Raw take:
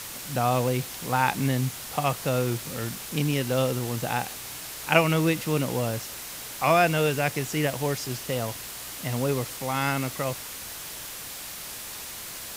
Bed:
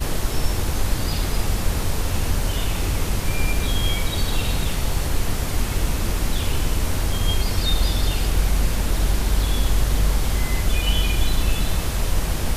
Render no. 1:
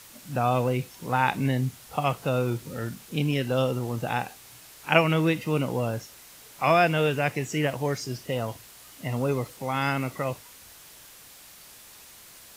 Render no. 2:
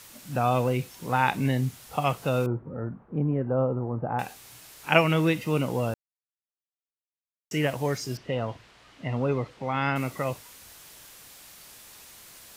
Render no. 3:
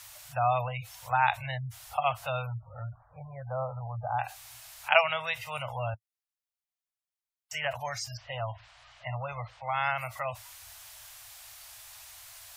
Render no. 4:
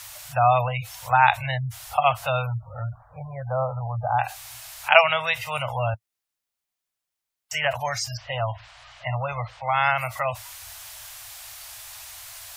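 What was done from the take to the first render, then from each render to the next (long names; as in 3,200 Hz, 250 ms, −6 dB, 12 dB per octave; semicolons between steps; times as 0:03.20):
noise reduction from a noise print 11 dB
0:02.46–0:04.19: low-pass filter 1,200 Hz 24 dB per octave; 0:05.94–0:07.51: silence; 0:08.17–0:09.96: low-pass filter 3,200 Hz
elliptic band-stop filter 110–650 Hz, stop band 40 dB; gate on every frequency bin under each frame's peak −25 dB strong
level +8 dB; brickwall limiter −1 dBFS, peak gain reduction 2 dB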